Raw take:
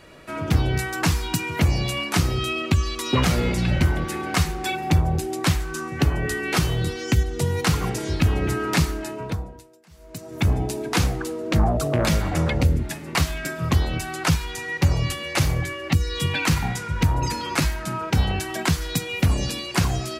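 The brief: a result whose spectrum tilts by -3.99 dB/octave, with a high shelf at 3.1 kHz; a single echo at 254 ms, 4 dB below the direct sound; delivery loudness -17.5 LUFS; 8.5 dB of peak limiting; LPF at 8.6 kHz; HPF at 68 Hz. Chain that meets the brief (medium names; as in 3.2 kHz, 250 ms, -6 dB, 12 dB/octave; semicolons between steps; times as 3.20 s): high-pass 68 Hz; low-pass 8.6 kHz; treble shelf 3.1 kHz +8 dB; peak limiter -12.5 dBFS; delay 254 ms -4 dB; trim +5.5 dB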